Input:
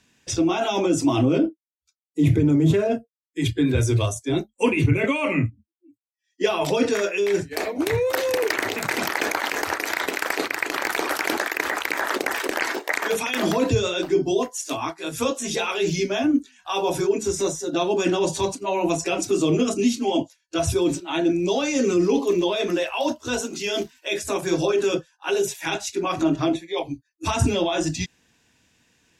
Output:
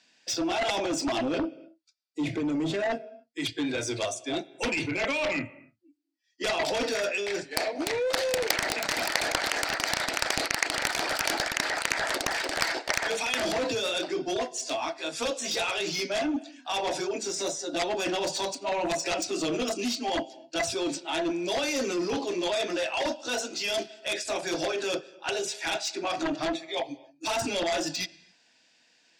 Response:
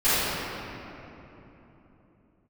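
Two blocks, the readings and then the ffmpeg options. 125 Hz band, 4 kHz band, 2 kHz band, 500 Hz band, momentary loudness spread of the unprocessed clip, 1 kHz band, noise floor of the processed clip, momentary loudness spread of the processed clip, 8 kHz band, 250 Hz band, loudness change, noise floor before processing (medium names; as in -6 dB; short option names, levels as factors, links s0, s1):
-18.5 dB, 0.0 dB, -3.0 dB, -7.0 dB, 7 LU, -4.0 dB, -65 dBFS, 5 LU, -2.0 dB, -10.0 dB, -5.5 dB, -79 dBFS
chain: -filter_complex "[0:a]highpass=380,equalizer=f=410:t=q:w=4:g=-8,equalizer=f=660:t=q:w=4:g=4,equalizer=f=1100:t=q:w=4:g=-7,equalizer=f=4600:t=q:w=4:g=8,equalizer=f=6600:t=q:w=4:g=-4,lowpass=f=8000:w=0.5412,lowpass=f=8000:w=1.3066,asplit=2[s0][s1];[1:a]atrim=start_sample=2205,afade=t=out:st=0.34:d=0.01,atrim=end_sample=15435[s2];[s1][s2]afir=irnorm=-1:irlink=0,volume=0.0126[s3];[s0][s3]amix=inputs=2:normalize=0,aeval=exprs='0.668*(cos(1*acos(clip(val(0)/0.668,-1,1)))-cos(1*PI/2))+0.188*(cos(7*acos(clip(val(0)/0.668,-1,1)))-cos(7*PI/2))':c=same"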